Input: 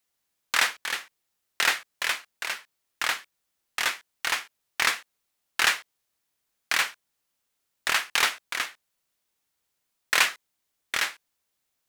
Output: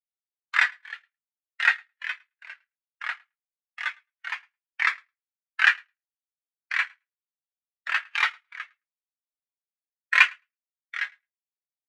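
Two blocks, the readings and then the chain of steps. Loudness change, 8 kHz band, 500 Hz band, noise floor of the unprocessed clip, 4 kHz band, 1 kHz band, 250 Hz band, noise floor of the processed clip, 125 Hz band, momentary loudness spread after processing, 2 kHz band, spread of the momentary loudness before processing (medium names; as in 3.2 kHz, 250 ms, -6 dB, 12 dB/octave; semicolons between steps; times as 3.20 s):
+1.5 dB, under -15 dB, under -10 dB, -79 dBFS, -7.0 dB, -2.5 dB, under -25 dB, under -85 dBFS, no reading, 19 LU, +2.5 dB, 10 LU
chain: high-pass 260 Hz 24 dB/octave; on a send: feedback delay 108 ms, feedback 27%, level -12 dB; on the sum: spectral contrast expander 2.5:1; trim +3.5 dB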